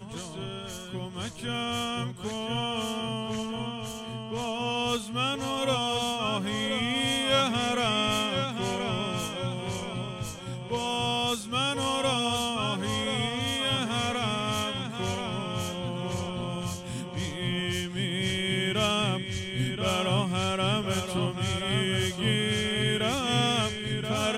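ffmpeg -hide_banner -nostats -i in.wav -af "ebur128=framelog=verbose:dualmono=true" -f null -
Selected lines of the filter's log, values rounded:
Integrated loudness:
  I:         -25.6 LUFS
  Threshold: -35.6 LUFS
Loudness range:
  LRA:         5.3 LU
  Threshold: -45.6 LUFS
  LRA low:   -28.9 LUFS
  LRA high:  -23.7 LUFS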